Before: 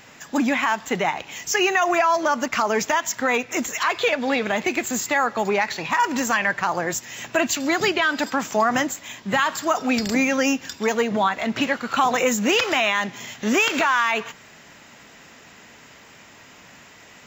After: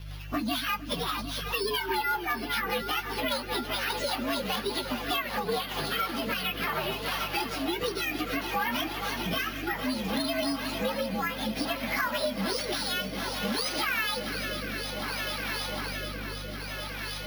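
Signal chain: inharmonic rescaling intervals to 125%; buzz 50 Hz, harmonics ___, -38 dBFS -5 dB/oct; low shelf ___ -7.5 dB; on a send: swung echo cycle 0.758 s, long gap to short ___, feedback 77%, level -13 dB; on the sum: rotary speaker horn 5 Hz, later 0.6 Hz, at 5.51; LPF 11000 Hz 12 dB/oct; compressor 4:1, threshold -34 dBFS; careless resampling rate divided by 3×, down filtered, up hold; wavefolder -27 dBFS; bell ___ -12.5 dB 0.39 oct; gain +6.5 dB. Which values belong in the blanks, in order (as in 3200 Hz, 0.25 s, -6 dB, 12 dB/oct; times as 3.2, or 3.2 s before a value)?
3, 490 Hz, 1.5:1, 8200 Hz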